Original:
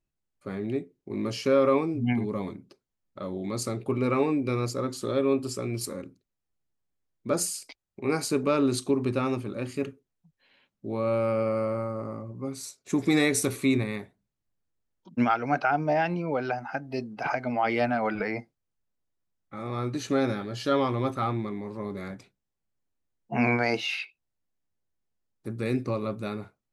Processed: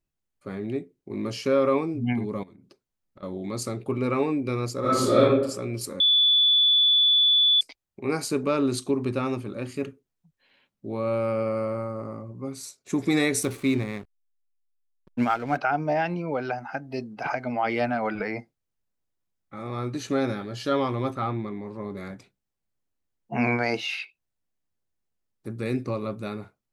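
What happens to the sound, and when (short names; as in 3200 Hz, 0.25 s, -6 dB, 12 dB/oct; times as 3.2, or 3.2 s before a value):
2.43–3.23 compressor 16:1, threshold -46 dBFS
4.8–5.2 reverb throw, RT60 0.84 s, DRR -10.5 dB
6–7.61 bleep 3460 Hz -16 dBFS
13.43–15.58 backlash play -37 dBFS
21.13–21.97 high shelf 5300 Hz -7.5 dB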